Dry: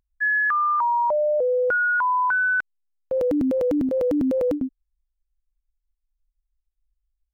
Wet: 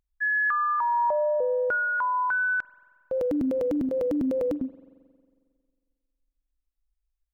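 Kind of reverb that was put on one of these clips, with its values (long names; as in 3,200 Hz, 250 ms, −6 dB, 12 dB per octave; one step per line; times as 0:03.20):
spring reverb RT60 1.9 s, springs 45 ms, chirp 70 ms, DRR 16.5 dB
level −4 dB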